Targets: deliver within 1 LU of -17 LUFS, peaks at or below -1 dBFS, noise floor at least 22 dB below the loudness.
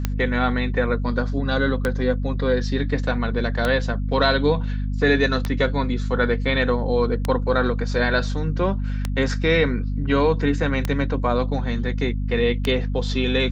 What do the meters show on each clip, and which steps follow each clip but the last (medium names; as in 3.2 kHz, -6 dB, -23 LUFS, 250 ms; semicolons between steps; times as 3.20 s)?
clicks found 8; hum 50 Hz; highest harmonic 250 Hz; hum level -22 dBFS; loudness -22.0 LUFS; peak level -5.5 dBFS; loudness target -17.0 LUFS
-> de-click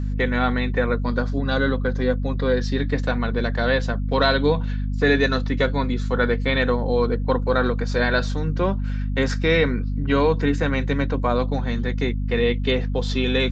clicks found 0; hum 50 Hz; highest harmonic 250 Hz; hum level -22 dBFS
-> hum notches 50/100/150/200/250 Hz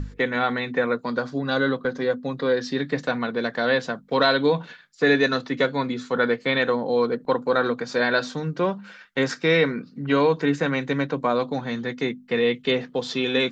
hum not found; loudness -23.5 LUFS; peak level -6.5 dBFS; loudness target -17.0 LUFS
-> trim +6.5 dB; peak limiter -1 dBFS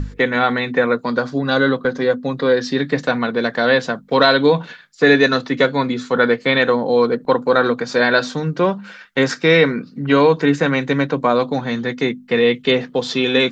loudness -17.0 LUFS; peak level -1.0 dBFS; noise floor -44 dBFS